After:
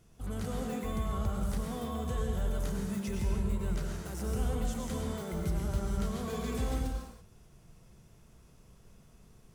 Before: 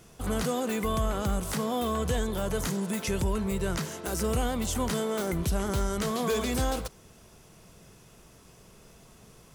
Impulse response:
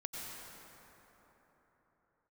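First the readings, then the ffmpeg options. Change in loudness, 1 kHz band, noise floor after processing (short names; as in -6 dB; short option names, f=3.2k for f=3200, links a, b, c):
-5.5 dB, -9.0 dB, -59 dBFS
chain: -filter_complex "[0:a]lowshelf=f=170:g=11[a];[1:a]atrim=start_sample=2205,afade=t=out:st=0.39:d=0.01,atrim=end_sample=17640[b];[a][b]afir=irnorm=-1:irlink=0,volume=-9dB"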